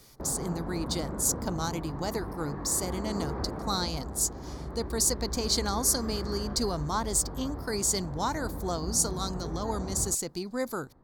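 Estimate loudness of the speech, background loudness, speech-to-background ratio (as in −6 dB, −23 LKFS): −30.5 LKFS, −38.0 LKFS, 7.5 dB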